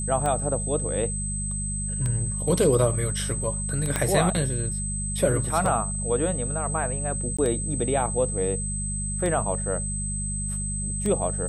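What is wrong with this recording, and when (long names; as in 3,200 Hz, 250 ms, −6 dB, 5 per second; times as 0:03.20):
mains hum 50 Hz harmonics 4 −31 dBFS
scratch tick 33 1/3 rpm −16 dBFS
whistle 8,200 Hz −30 dBFS
0:03.96: click −9 dBFS
0:07.37–0:07.38: drop-out 15 ms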